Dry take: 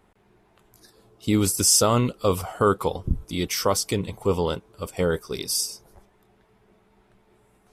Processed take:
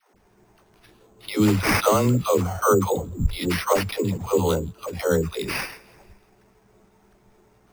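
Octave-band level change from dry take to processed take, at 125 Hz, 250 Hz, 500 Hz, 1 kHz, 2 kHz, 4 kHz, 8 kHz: +2.5, +2.5, +2.5, +2.5, +7.0, -4.0, -9.0 dB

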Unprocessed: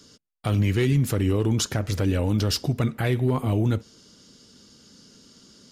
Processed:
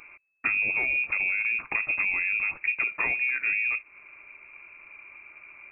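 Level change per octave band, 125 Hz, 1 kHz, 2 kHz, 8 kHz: under -30 dB, -5.0 dB, +14.0 dB, under -40 dB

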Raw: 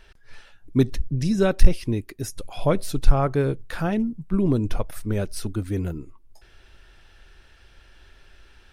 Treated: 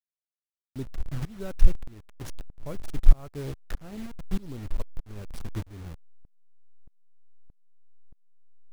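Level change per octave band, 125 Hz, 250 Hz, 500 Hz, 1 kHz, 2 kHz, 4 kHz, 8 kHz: -9.5, -15.5, -17.0, -17.0, -13.5, -11.5, -12.5 dB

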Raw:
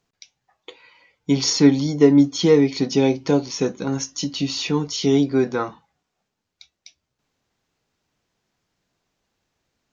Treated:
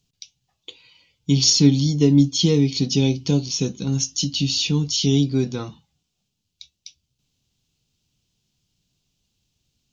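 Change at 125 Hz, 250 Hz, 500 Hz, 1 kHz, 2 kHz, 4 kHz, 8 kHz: +6.5 dB, -1.5 dB, -7.0 dB, -11.0 dB, -4.5 dB, +5.0 dB, n/a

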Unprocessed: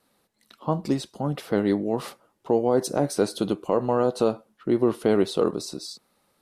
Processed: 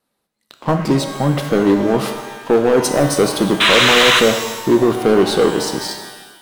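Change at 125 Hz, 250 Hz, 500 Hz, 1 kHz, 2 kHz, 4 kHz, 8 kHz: +10.0, +8.5, +8.5, +11.5, +23.5, +21.5, +14.5 dB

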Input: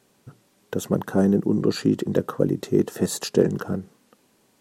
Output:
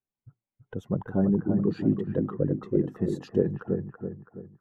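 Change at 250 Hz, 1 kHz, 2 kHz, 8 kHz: -4.0 dB, -8.5 dB, -10.5 dB, under -25 dB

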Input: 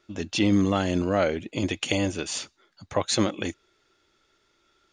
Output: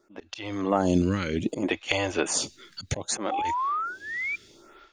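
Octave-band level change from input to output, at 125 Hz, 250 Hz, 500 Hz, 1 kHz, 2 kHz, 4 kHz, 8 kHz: -2.0, -3.0, -2.0, +5.0, +2.5, -2.5, +2.5 dB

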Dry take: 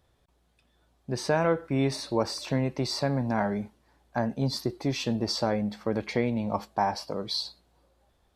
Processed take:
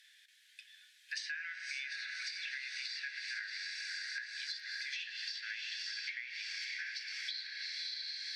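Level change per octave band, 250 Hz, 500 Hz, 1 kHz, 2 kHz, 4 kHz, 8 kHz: under -40 dB, under -40 dB, -33.5 dB, +0.5 dB, -3.5 dB, -8.5 dB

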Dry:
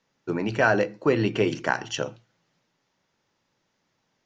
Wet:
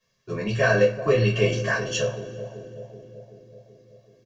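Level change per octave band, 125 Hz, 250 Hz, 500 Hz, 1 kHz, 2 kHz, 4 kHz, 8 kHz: +7.0 dB, -2.5 dB, +3.5 dB, -3.5 dB, +1.0 dB, +3.5 dB, n/a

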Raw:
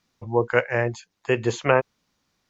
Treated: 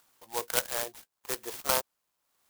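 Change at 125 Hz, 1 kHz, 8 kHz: -24.5 dB, -9.0 dB, n/a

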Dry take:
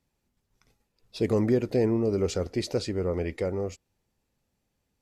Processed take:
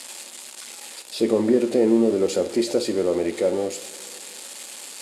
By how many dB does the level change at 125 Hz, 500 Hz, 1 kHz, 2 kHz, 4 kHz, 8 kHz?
-7.5, +6.5, +6.0, +5.5, +8.0, +13.0 dB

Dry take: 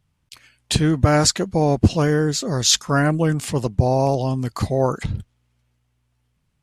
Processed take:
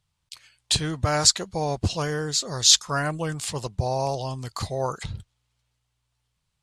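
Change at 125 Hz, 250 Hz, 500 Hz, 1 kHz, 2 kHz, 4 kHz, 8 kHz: -9.5, -12.5, -8.0, -5.0, -5.0, +1.0, +0.5 dB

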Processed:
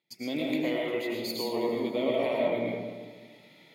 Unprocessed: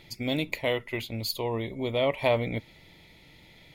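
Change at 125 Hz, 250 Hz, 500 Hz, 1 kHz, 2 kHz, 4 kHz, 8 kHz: -10.5, +2.5, 0.0, -2.5, -3.5, -3.5, -3.0 dB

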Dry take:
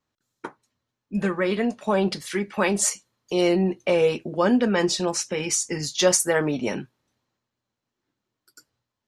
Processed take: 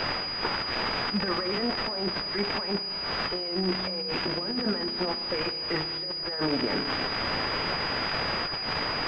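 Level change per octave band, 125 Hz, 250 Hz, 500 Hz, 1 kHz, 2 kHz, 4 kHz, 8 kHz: -5.0 dB, -7.0 dB, -8.5 dB, 0.0 dB, 0.0 dB, +5.5 dB, under -30 dB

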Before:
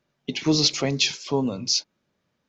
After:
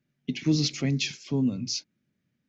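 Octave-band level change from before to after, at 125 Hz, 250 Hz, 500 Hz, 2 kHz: +1.5, -1.0, -9.5, -5.5 dB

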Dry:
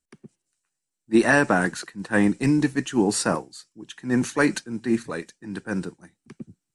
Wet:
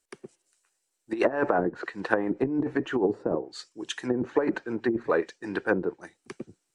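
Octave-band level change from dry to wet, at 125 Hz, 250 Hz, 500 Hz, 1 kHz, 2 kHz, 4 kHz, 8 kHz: -10.0, -6.5, +0.5, -3.5, -7.5, -6.5, -16.5 dB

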